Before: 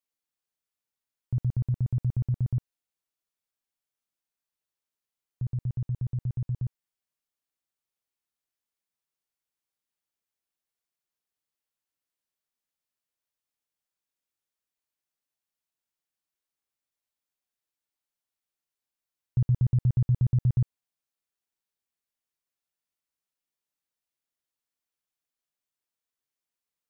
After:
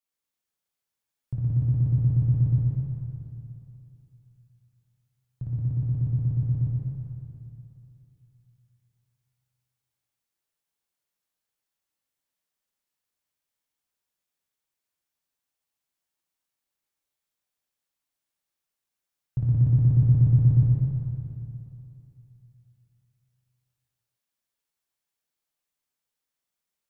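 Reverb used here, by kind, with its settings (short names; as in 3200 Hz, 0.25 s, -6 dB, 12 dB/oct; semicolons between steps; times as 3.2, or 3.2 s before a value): plate-style reverb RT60 3 s, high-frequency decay 0.95×, DRR -4.5 dB; gain -2 dB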